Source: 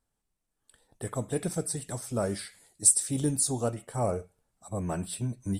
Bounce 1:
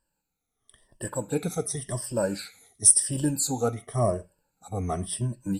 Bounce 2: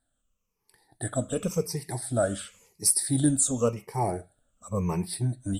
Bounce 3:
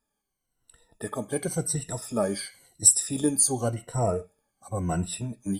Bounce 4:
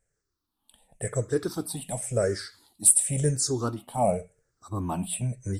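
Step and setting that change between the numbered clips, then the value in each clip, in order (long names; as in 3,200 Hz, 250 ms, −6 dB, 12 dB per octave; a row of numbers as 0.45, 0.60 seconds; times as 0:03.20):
rippled gain that drifts along the octave scale, ripples per octave: 1.3, 0.81, 2, 0.52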